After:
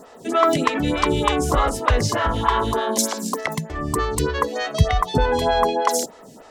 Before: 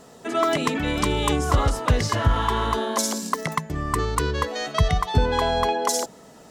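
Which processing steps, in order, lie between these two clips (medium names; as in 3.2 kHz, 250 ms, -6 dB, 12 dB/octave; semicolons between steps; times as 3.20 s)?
lamp-driven phase shifter 3.3 Hz; trim +6 dB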